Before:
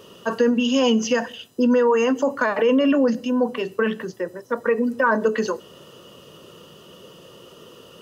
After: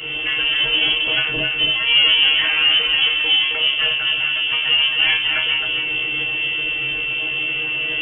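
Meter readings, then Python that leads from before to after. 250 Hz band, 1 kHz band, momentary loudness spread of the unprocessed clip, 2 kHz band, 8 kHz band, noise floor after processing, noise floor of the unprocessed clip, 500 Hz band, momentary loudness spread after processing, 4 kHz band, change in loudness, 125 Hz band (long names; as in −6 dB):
−17.5 dB, −6.5 dB, 11 LU, +12.0 dB, can't be measured, −23 dBFS, −47 dBFS, −15.0 dB, 7 LU, +20.5 dB, +5.0 dB, +1.5 dB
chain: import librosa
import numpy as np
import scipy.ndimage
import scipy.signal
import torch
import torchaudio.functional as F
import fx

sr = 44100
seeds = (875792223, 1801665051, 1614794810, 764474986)

y = fx.peak_eq(x, sr, hz=170.0, db=6.5, octaves=2.2)
y = fx.level_steps(y, sr, step_db=10)
y = fx.power_curve(y, sr, exponent=0.35)
y = y + 10.0 ** (-29.0 / 20.0) * np.sin(2.0 * np.pi * 610.0 * np.arange(len(y)) / sr)
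y = fx.stiff_resonator(y, sr, f0_hz=63.0, decay_s=0.59, stiffness=0.002)
y = y + 10.0 ** (-5.0 / 20.0) * np.pad(y, (int(267 * sr / 1000.0), 0))[:len(y)]
y = fx.freq_invert(y, sr, carrier_hz=3300)
y = F.gain(torch.from_numpy(y), 6.0).numpy()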